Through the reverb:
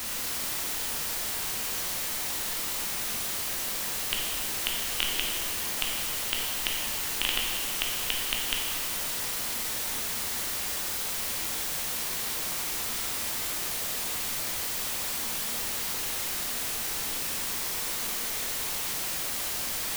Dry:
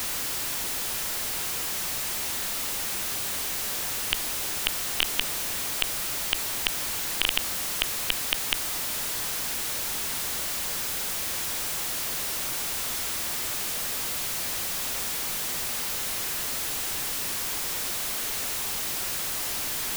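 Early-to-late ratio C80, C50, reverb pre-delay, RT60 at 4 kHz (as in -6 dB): 2.5 dB, 1.0 dB, 6 ms, 1.9 s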